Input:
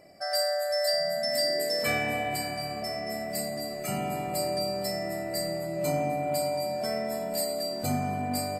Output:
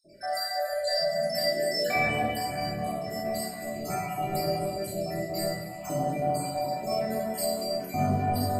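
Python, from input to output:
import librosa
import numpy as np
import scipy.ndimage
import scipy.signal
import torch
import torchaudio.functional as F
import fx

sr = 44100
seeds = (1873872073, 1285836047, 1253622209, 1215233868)

y = fx.spec_dropout(x, sr, seeds[0], share_pct=55)
y = fx.room_shoebox(y, sr, seeds[1], volume_m3=590.0, walls='mixed', distance_m=3.4)
y = y * 10.0 ** (-4.5 / 20.0)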